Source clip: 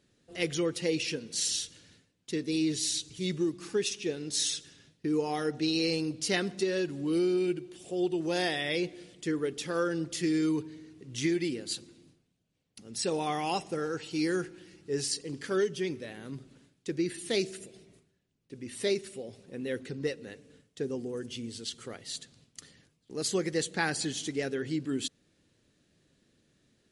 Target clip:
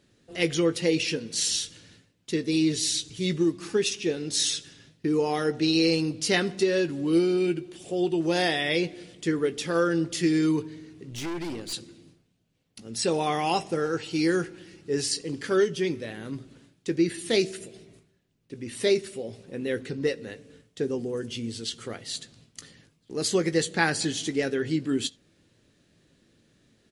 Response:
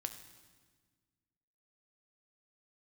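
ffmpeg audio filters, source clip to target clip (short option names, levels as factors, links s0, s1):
-filter_complex "[0:a]asplit=2[s0][s1];[s1]adelay=18,volume=0.251[s2];[s0][s2]amix=inputs=2:normalize=0,asplit=2[s3][s4];[1:a]atrim=start_sample=2205,atrim=end_sample=3969,lowpass=6200[s5];[s4][s5]afir=irnorm=-1:irlink=0,volume=0.335[s6];[s3][s6]amix=inputs=2:normalize=0,asplit=3[s7][s8][s9];[s7]afade=t=out:st=11.09:d=0.02[s10];[s8]aeval=exprs='(tanh(50.1*val(0)+0.5)-tanh(0.5))/50.1':c=same,afade=t=in:st=11.09:d=0.02,afade=t=out:st=11.72:d=0.02[s11];[s9]afade=t=in:st=11.72:d=0.02[s12];[s10][s11][s12]amix=inputs=3:normalize=0,volume=1.5"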